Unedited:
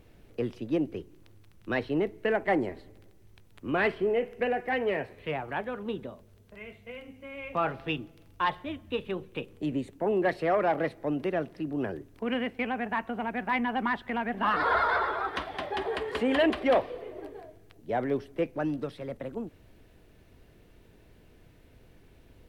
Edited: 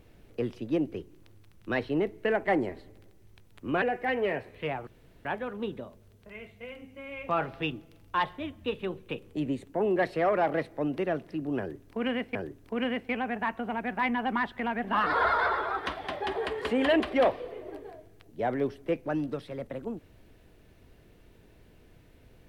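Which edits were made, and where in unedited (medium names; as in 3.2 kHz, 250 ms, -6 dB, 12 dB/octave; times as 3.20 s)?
3.82–4.46 s: delete
5.51 s: insert room tone 0.38 s
11.85–12.61 s: loop, 2 plays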